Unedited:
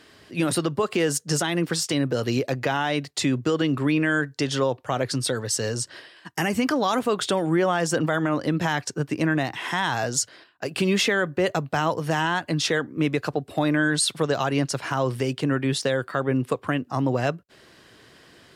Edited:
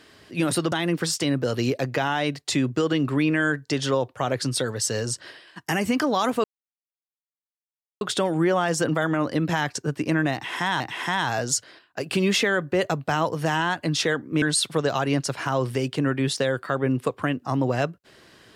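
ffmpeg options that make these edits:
ffmpeg -i in.wav -filter_complex "[0:a]asplit=5[link_01][link_02][link_03][link_04][link_05];[link_01]atrim=end=0.722[link_06];[link_02]atrim=start=1.408:end=7.13,asetpts=PTS-STARTPTS,afade=type=out:start_time=5.718:duration=0.004:curve=hsin,apad=pad_dur=1.57[link_07];[link_03]atrim=start=7.13:end=9.922,asetpts=PTS-STARTPTS,afade=type=in:duration=0.004:curve=hsin[link_08];[link_04]atrim=start=9.448:end=13.072[link_09];[link_05]atrim=start=13.868[link_10];[link_07][link_08]concat=n=2:v=0:a=1[link_11];[link_06][link_11]acrossfade=duration=0.004:curve1=hsin:curve2=hsin[link_12];[link_12][link_09]acrossfade=duration=0.004:curve1=hsin:curve2=hsin[link_13];[link_13][link_10]acrossfade=duration=0.004:curve1=hsin:curve2=hsin" out.wav

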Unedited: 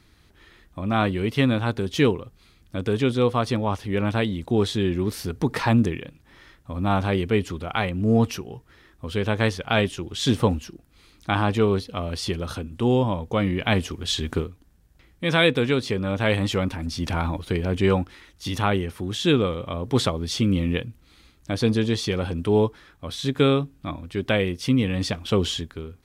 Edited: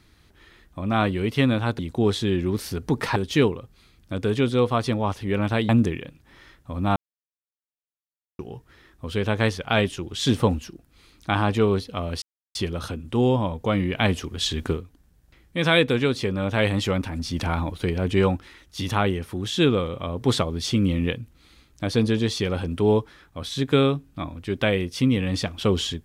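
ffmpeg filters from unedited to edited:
ffmpeg -i in.wav -filter_complex "[0:a]asplit=7[link_01][link_02][link_03][link_04][link_05][link_06][link_07];[link_01]atrim=end=1.792[link_08];[link_02]atrim=start=4.318:end=5.692[link_09];[link_03]atrim=start=1.788:end=4.322[link_10];[link_04]atrim=start=5.688:end=6.96,asetpts=PTS-STARTPTS,afade=type=out:start_time=1.268:duration=0.004:curve=hsin[link_11];[link_05]atrim=start=6.96:end=8.39,asetpts=PTS-STARTPTS,volume=0[link_12];[link_06]atrim=start=8.39:end=12.22,asetpts=PTS-STARTPTS,afade=type=in:duration=0.004:curve=hsin,afade=type=out:start_time=3.826:duration=0.004:curve=hsin,apad=pad_dur=0.33[link_13];[link_07]atrim=start=12.22,asetpts=PTS-STARTPTS,afade=type=in:duration=0.004:curve=hsin[link_14];[link_08][link_09]acrossfade=duration=0.004:curve1=hsin:curve2=hsin[link_15];[link_15][link_10]acrossfade=duration=0.004:curve1=hsin:curve2=hsin[link_16];[link_11][link_12][link_13][link_14]concat=n=4:v=0:a=1[link_17];[link_16][link_17]acrossfade=duration=0.004:curve1=hsin:curve2=hsin" out.wav

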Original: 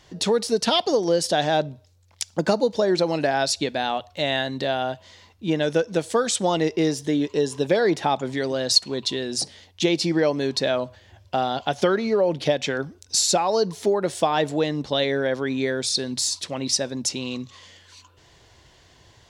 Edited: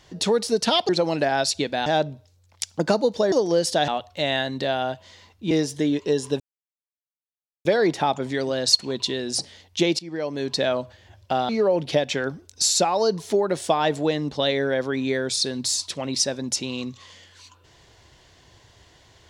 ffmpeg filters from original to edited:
ffmpeg -i in.wav -filter_complex "[0:a]asplit=9[link_01][link_02][link_03][link_04][link_05][link_06][link_07][link_08][link_09];[link_01]atrim=end=0.892[link_10];[link_02]atrim=start=2.908:end=3.882[link_11];[link_03]atrim=start=1.448:end=2.912[link_12];[link_04]atrim=start=0.888:end=1.452[link_13];[link_05]atrim=start=3.878:end=5.512[link_14];[link_06]atrim=start=6.788:end=7.68,asetpts=PTS-STARTPTS,afade=type=out:start_time=0.888:duration=0.004:curve=hsin,apad=pad_dur=1.25[link_15];[link_07]atrim=start=7.68:end=10.02,asetpts=PTS-STARTPTS,afade=type=in:duration=0.004:curve=hsin,afade=type=out:start_time=2.336:duration=0.004:curve=hsin:silence=0.0841395[link_16];[link_08]atrim=start=10.02:end=11.522,asetpts=PTS-STARTPTS,afade=type=in:duration=0.63:silence=0.0841395[link_17];[link_09]atrim=start=12.018[link_18];[link_10][link_11]acrossfade=duration=0.004:curve1=hsin:curve2=hsin[link_19];[link_19][link_12]acrossfade=duration=0.004:curve1=hsin:curve2=hsin[link_20];[link_20][link_13]acrossfade=duration=0.004:curve1=hsin:curve2=hsin[link_21];[link_21][link_14]acrossfade=duration=0.004:curve1=hsin:curve2=hsin[link_22];[link_15][link_16][link_17]concat=n=3:v=0:a=1[link_23];[link_22][link_23]acrossfade=duration=0.004:curve1=hsin:curve2=hsin[link_24];[link_24][link_18]acrossfade=duration=0.004:curve1=hsin:curve2=hsin" out.wav

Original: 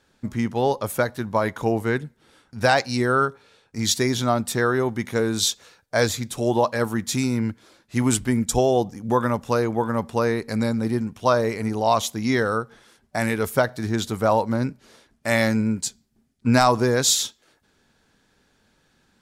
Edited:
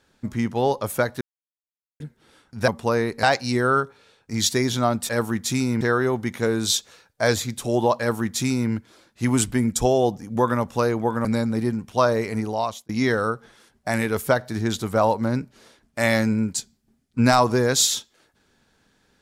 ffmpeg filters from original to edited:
ffmpeg -i in.wav -filter_complex "[0:a]asplit=9[link_01][link_02][link_03][link_04][link_05][link_06][link_07][link_08][link_09];[link_01]atrim=end=1.21,asetpts=PTS-STARTPTS,afade=type=out:start_time=1.206:duration=0.004:curve=hsin[link_10];[link_02]atrim=start=1.21:end=2,asetpts=PTS-STARTPTS,volume=0[link_11];[link_03]atrim=start=2:end=2.682,asetpts=PTS-STARTPTS,afade=type=in:duration=0.004:curve=hsin[link_12];[link_04]atrim=start=9.978:end=10.532[link_13];[link_05]atrim=start=2.678:end=4.542[link_14];[link_06]atrim=start=6.718:end=7.442[link_15];[link_07]atrim=start=4.538:end=9.982[link_16];[link_08]atrim=start=10.528:end=12.17,asetpts=PTS-STARTPTS,afade=type=out:start_time=1.132:duration=0.51[link_17];[link_09]atrim=start=12.17,asetpts=PTS-STARTPTS,afade=type=in:duration=0.004:curve=hsin[link_18];[link_10][link_11][link_12]concat=n=3:v=0:a=1[link_19];[link_19][link_13]acrossfade=duration=0.004:curve1=hsin:curve2=hsin[link_20];[link_20][link_14]acrossfade=duration=0.004:curve1=hsin:curve2=hsin[link_21];[link_21][link_15]acrossfade=duration=0.004:curve1=hsin:curve2=hsin[link_22];[link_22][link_16]acrossfade=duration=0.004:curve1=hsin:curve2=hsin[link_23];[link_17][link_18]concat=n=2:v=0:a=1[link_24];[link_23][link_24]acrossfade=duration=0.004:curve1=hsin:curve2=hsin" out.wav

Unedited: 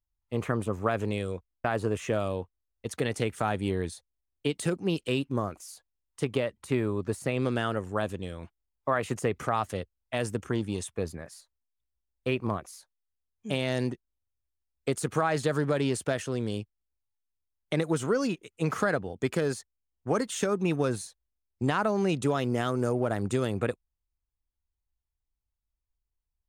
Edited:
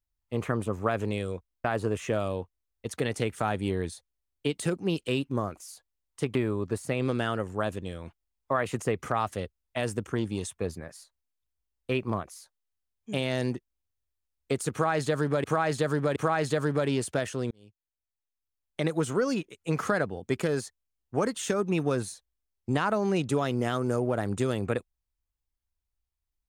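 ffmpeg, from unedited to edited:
ffmpeg -i in.wav -filter_complex "[0:a]asplit=5[link_01][link_02][link_03][link_04][link_05];[link_01]atrim=end=6.352[link_06];[link_02]atrim=start=6.718:end=15.812[link_07];[link_03]atrim=start=15.088:end=15.812[link_08];[link_04]atrim=start=15.088:end=16.44,asetpts=PTS-STARTPTS,afade=type=out:start_time=1.348:duration=0.004:curve=hsin[link_09];[link_05]atrim=start=16.44,asetpts=PTS-STARTPTS,afade=type=in:duration=1.42[link_10];[link_06][link_07]acrossfade=duration=0.004:curve1=hsin:curve2=hsin[link_11];[link_11][link_08]acrossfade=duration=0.004:curve1=hsin:curve2=hsin[link_12];[link_09][link_10]concat=n=2:v=0:a=1[link_13];[link_12][link_13]acrossfade=duration=0.004:curve1=hsin:curve2=hsin" out.wav

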